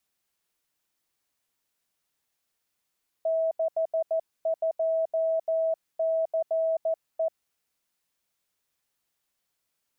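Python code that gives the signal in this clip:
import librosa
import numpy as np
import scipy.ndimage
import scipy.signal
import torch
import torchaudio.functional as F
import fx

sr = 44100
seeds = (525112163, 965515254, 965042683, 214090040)

y = fx.morse(sr, text='62CE', wpm=14, hz=649.0, level_db=-22.5)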